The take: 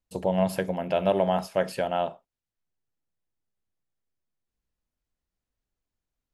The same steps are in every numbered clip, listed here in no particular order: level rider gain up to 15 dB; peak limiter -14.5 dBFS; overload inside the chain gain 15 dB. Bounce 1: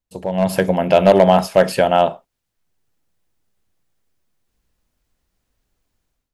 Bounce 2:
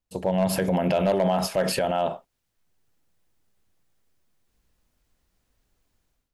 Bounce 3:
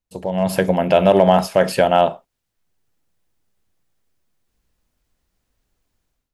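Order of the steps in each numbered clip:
overload inside the chain > peak limiter > level rider; overload inside the chain > level rider > peak limiter; peak limiter > overload inside the chain > level rider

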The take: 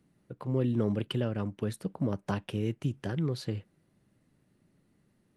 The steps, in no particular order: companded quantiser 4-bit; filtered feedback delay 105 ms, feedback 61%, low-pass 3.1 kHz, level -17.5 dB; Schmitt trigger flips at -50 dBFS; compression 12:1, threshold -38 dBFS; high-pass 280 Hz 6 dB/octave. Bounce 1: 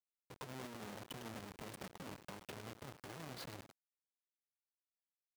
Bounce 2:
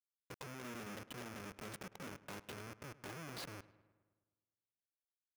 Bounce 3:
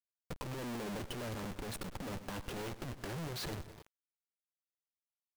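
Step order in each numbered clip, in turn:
compression > Schmitt trigger > filtered feedback delay > companded quantiser > high-pass; compression > Schmitt trigger > high-pass > companded quantiser > filtered feedback delay; high-pass > Schmitt trigger > filtered feedback delay > companded quantiser > compression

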